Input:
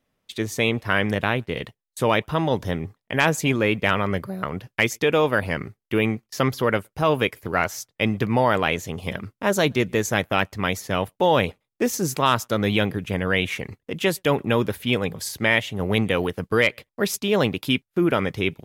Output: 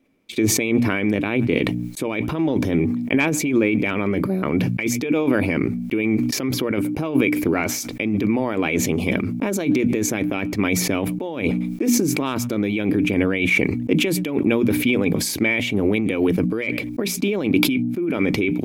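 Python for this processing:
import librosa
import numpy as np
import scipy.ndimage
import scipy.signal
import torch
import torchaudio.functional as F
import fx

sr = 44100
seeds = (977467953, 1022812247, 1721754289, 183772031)

y = fx.hum_notches(x, sr, base_hz=60, count=5)
y = fx.over_compress(y, sr, threshold_db=-27.0, ratio=-1.0)
y = fx.small_body(y, sr, hz=(290.0, 2300.0), ring_ms=25, db=17)
y = fx.sustainer(y, sr, db_per_s=33.0)
y = y * 10.0 ** (-4.0 / 20.0)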